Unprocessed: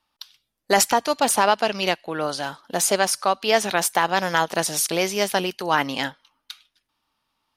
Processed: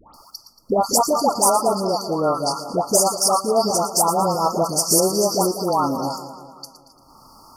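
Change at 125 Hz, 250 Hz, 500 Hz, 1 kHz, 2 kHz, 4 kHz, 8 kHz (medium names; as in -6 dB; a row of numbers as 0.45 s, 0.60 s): +5.5 dB, +5.0 dB, +3.5 dB, +2.5 dB, under -20 dB, -0.5 dB, +4.5 dB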